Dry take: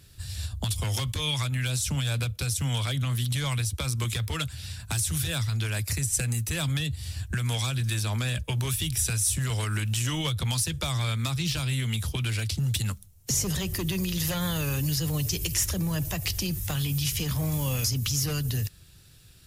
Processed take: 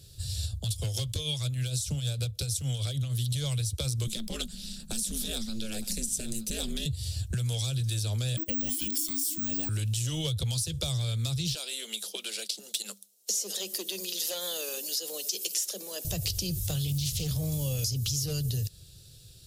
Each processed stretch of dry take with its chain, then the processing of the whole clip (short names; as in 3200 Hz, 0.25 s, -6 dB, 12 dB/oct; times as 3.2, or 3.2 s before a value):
0.51–3.19 tremolo triangle 6.5 Hz, depth 65% + notch 940 Hz, Q 18
4.07–6.86 ring modulator 110 Hz + echo 0.915 s -14.5 dB
8.37–9.69 frequency shift -380 Hz + careless resampling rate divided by 2×, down none, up zero stuff
11.55–16.05 Chebyshev high-pass 200 Hz, order 8 + bell 250 Hz -12 dB 0.87 oct
16.87–17.28 comb 1.5 ms, depth 50% + Doppler distortion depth 0.24 ms
whole clip: ten-band EQ 125 Hz +4 dB, 250 Hz -6 dB, 500 Hz +7 dB, 1000 Hz -11 dB, 2000 Hz -10 dB, 4000 Hz +6 dB, 8000 Hz +3 dB; compressor, threshold -27 dBFS